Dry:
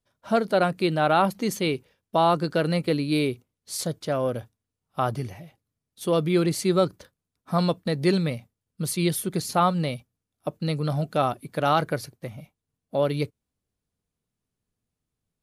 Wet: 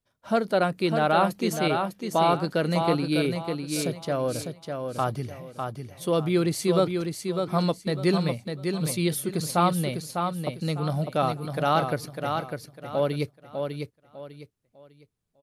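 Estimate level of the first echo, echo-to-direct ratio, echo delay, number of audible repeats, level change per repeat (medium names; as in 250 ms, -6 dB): -5.5 dB, -5.0 dB, 601 ms, 3, -11.0 dB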